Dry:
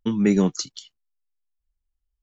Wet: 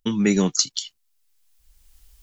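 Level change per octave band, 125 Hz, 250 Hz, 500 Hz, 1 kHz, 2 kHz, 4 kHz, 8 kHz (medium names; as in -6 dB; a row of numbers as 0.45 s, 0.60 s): -0.5 dB, -0.5 dB, -0.5 dB, +1.0 dB, +4.5 dB, +9.0 dB, no reading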